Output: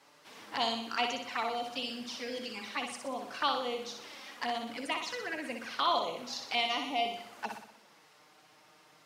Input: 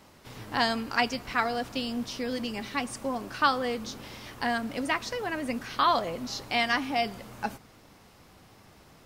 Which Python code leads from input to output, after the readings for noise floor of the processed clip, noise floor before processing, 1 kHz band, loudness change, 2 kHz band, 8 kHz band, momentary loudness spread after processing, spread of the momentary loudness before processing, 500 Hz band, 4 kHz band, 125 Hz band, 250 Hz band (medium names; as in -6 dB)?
-62 dBFS, -56 dBFS, -5.0 dB, -5.0 dB, -7.0 dB, -4.0 dB, 11 LU, 11 LU, -4.5 dB, -1.0 dB, under -15 dB, -9.5 dB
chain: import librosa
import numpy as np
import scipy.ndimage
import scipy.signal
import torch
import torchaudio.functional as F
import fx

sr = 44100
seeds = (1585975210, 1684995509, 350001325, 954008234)

y = fx.env_flanger(x, sr, rest_ms=8.0, full_db=-27.0)
y = fx.weighting(y, sr, curve='A')
y = fx.room_flutter(y, sr, wall_m=10.5, rt60_s=0.63)
y = F.gain(torch.from_numpy(y), -1.5).numpy()